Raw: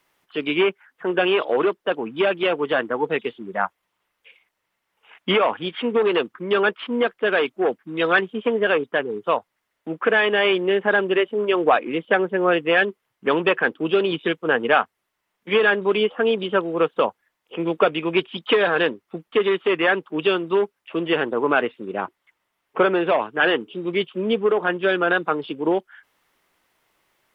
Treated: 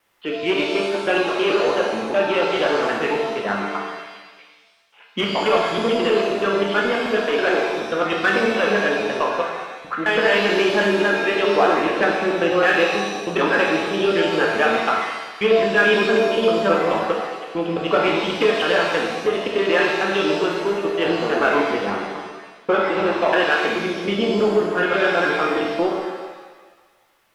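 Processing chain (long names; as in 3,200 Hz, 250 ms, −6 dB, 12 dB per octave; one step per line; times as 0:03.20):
slices reordered back to front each 107 ms, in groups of 2
in parallel at −4.5 dB: soft clipping −21 dBFS, distortion −8 dB
on the sum: reverb with rising layers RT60 1.3 s, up +7 semitones, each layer −8 dB, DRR −2 dB
level −4.5 dB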